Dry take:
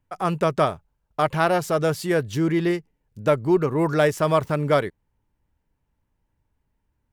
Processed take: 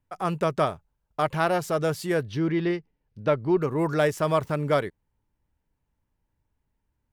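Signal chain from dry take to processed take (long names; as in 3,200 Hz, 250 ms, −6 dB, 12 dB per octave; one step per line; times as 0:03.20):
0:02.25–0:03.61: Savitzky-Golay smoothing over 15 samples
level −3.5 dB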